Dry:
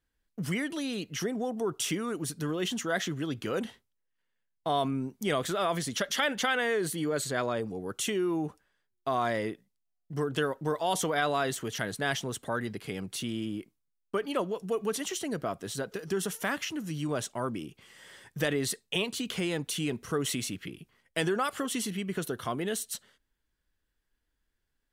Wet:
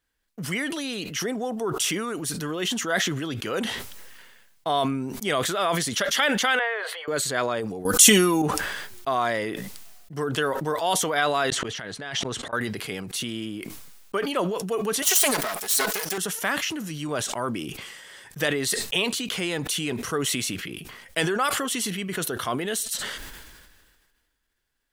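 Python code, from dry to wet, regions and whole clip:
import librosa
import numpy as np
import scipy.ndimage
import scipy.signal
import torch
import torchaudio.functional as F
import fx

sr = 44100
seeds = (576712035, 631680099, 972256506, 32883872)

y = fx.chain(x, sr, fx.steep_highpass(hz=490.0, slope=72),
    fx.air_absorb(metres=460.0), at=(6.59, 7.08))
y = fx.chain(y, sr, fx.bass_treble(bass_db=6, treble_db=13),
    fx.comb(ms=4.0, depth=0.59),
    fx.env_flatten(amount_pct=50), at=(7.85, 8.42))
y = fx.chain(y, sr, fx.lowpass(hz=5500.0, slope=12),
    fx.over_compress(threshold_db=-35.0, ratio=-1.0),
    fx.auto_swell(attack_ms=434.0), at=(11.5, 12.53))
y = fx.chain(y, sr, fx.lower_of_two(delay_ms=4.7),
    fx.riaa(side='recording'), at=(15.02, 16.18))
y = fx.low_shelf(y, sr, hz=450.0, db=-8.0)
y = fx.sustainer(y, sr, db_per_s=34.0)
y = y * librosa.db_to_amplitude(6.5)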